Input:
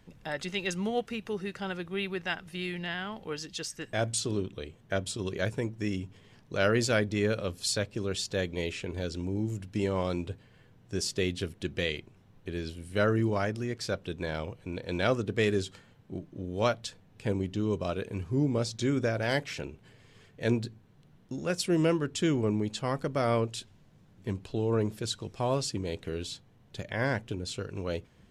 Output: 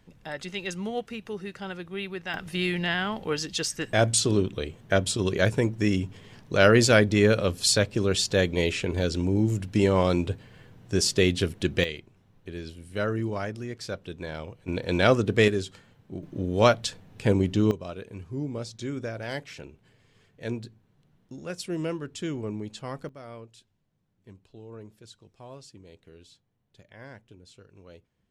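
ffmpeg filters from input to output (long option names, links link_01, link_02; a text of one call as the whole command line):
ffmpeg -i in.wav -af "asetnsamples=nb_out_samples=441:pad=0,asendcmd='2.34 volume volume 8dB;11.84 volume volume -2dB;14.68 volume volume 7dB;15.48 volume volume 1dB;16.23 volume volume 8dB;17.71 volume volume -5dB;23.09 volume volume -16dB',volume=-1dB" out.wav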